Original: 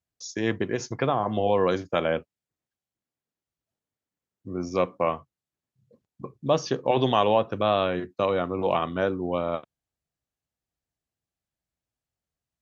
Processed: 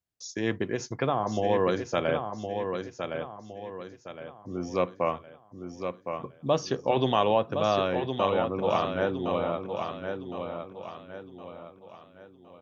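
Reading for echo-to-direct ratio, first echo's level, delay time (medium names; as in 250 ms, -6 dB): -6.0 dB, -6.5 dB, 1063 ms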